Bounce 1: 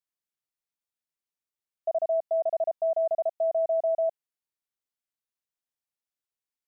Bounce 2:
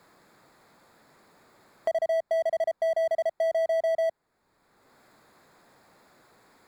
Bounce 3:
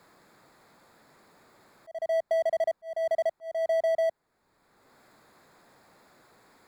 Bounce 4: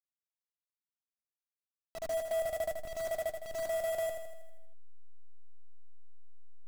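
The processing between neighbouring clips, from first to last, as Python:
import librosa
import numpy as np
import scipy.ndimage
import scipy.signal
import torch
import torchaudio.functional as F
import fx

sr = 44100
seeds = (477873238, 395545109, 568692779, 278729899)

y1 = fx.wiener(x, sr, points=15)
y1 = fx.power_curve(y1, sr, exponent=0.7)
y1 = fx.band_squash(y1, sr, depth_pct=70)
y2 = fx.auto_swell(y1, sr, attack_ms=292.0)
y3 = fx.delta_hold(y2, sr, step_db=-31.5)
y3 = fx.echo_feedback(y3, sr, ms=80, feedback_pct=58, wet_db=-6.5)
y3 = F.gain(torch.from_numpy(y3), -6.5).numpy()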